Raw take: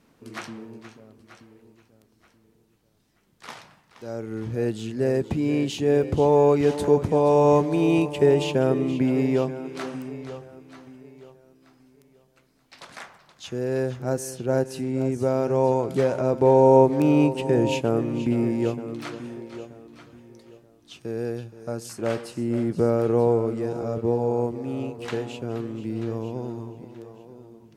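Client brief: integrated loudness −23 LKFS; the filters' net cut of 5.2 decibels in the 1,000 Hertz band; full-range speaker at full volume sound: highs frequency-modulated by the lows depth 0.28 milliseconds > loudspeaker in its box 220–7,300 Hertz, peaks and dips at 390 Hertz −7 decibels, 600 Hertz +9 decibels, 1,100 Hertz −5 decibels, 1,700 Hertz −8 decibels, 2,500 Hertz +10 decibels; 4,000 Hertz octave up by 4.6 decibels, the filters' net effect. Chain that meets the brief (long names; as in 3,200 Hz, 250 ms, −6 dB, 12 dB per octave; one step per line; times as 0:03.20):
parametric band 1,000 Hz −7 dB
parametric band 4,000 Hz +4 dB
highs frequency-modulated by the lows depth 0.28 ms
loudspeaker in its box 220–7,300 Hz, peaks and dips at 390 Hz −7 dB, 600 Hz +9 dB, 1,100 Hz −5 dB, 1,700 Hz −8 dB, 2,500 Hz +10 dB
level +1.5 dB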